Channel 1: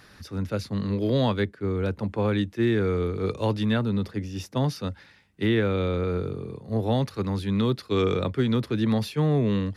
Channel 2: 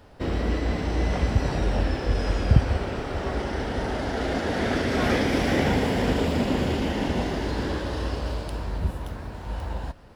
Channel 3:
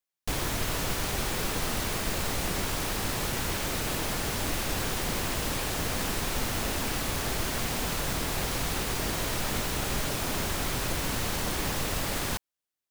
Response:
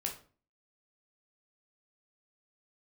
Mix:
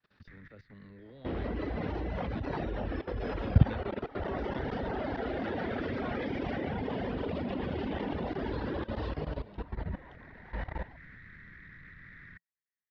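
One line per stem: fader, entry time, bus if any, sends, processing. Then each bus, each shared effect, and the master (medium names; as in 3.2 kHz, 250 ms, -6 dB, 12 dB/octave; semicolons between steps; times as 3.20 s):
-13.5 dB, 0.00 s, bus A, no send, expander -49 dBFS
+2.0 dB, 1.05 s, no bus, no send, reverb removal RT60 1.6 s; treble shelf 2.3 kHz -9 dB
-3.0 dB, 0.00 s, bus A, no send, FFT filter 170 Hz 0 dB, 790 Hz -29 dB, 1.9 kHz +10 dB, 2.9 kHz -22 dB; saturation -25 dBFS, distortion -19 dB; auto duck -15 dB, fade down 0.60 s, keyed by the first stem
bus A: 0.0 dB, transient shaper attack +8 dB, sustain 0 dB; compression 4:1, threshold -36 dBFS, peak gain reduction 9.5 dB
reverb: none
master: low-pass 4.1 kHz 24 dB/octave; bass shelf 76 Hz -7.5 dB; level held to a coarse grid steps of 17 dB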